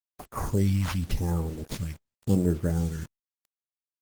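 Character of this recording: aliases and images of a low sample rate 7.9 kHz, jitter 0%; phasing stages 2, 0.87 Hz, lowest notch 380–3800 Hz; a quantiser's noise floor 8-bit, dither none; Opus

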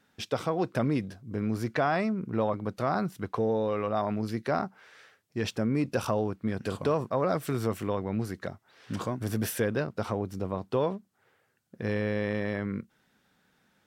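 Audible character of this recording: noise floor -71 dBFS; spectral tilt -6.0 dB/octave

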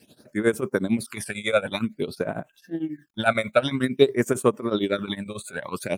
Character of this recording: a quantiser's noise floor 12-bit, dither none; phasing stages 12, 0.51 Hz, lowest notch 290–4500 Hz; tremolo triangle 11 Hz, depth 90%

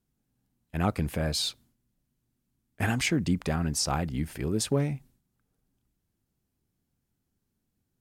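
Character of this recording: noise floor -80 dBFS; spectral tilt -4.5 dB/octave

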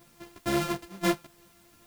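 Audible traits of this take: a buzz of ramps at a fixed pitch in blocks of 128 samples; tremolo saw down 2.9 Hz, depth 35%; a quantiser's noise floor 10-bit, dither triangular; a shimmering, thickened sound

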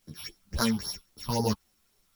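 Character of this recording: a buzz of ramps at a fixed pitch in blocks of 8 samples; phasing stages 6, 3.7 Hz, lowest notch 460–2700 Hz; a quantiser's noise floor 12-bit, dither triangular; a shimmering, thickened sound

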